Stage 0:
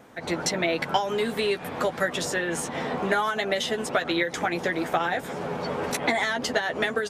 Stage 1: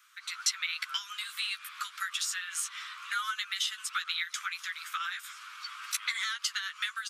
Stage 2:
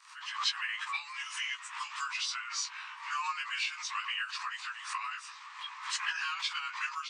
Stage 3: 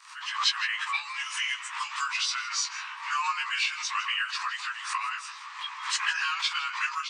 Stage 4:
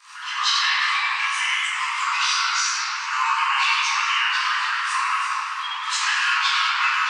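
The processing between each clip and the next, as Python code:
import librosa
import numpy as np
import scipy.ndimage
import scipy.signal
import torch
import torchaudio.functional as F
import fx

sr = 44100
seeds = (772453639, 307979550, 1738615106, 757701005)

y1 = scipy.signal.sosfilt(scipy.signal.butter(12, 1200.0, 'highpass', fs=sr, output='sos'), x)
y1 = fx.peak_eq(y1, sr, hz=1800.0, db=-9.5, octaves=0.63)
y2 = fx.partial_stretch(y1, sr, pct=89)
y2 = fx.pre_swell(y2, sr, db_per_s=98.0)
y3 = y2 + 10.0 ** (-15.5 / 20.0) * np.pad(y2, (int(160 * sr / 1000.0), 0))[:len(y2)]
y3 = y3 * librosa.db_to_amplitude(6.0)
y4 = fx.room_shoebox(y3, sr, seeds[0], volume_m3=210.0, walls='hard', distance_m=1.3)
y4 = fx.echo_warbled(y4, sr, ms=99, feedback_pct=60, rate_hz=2.8, cents=212, wet_db=-10.0)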